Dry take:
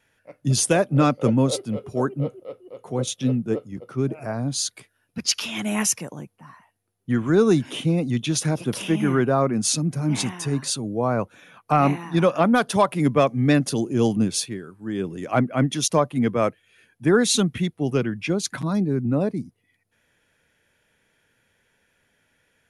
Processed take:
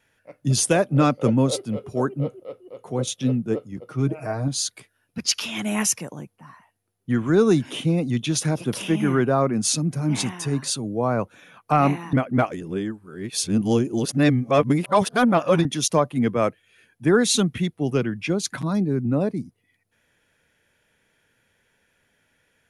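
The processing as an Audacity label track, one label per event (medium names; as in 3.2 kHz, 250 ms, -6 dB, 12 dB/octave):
3.880000	4.480000	comb 6.4 ms
12.130000	15.650000	reverse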